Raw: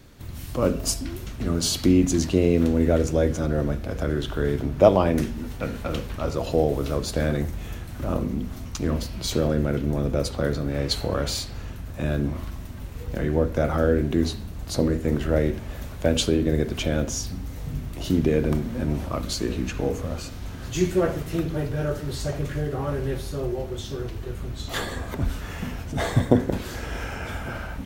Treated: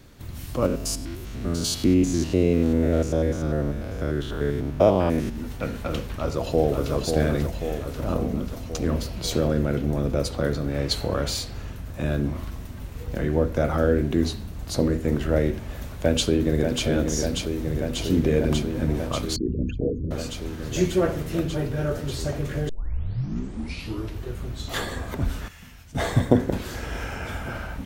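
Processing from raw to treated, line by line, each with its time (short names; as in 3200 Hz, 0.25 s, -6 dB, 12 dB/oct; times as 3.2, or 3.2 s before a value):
0.66–5.36 stepped spectrum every 0.1 s
6.03–6.92 echo throw 0.54 s, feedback 70%, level -5.5 dB
15.8–16.86 echo throw 0.59 s, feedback 85%, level -5.5 dB
19.36–20.11 formant sharpening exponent 3
22.69 tape start 1.52 s
25.48–25.95 passive tone stack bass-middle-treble 5-5-5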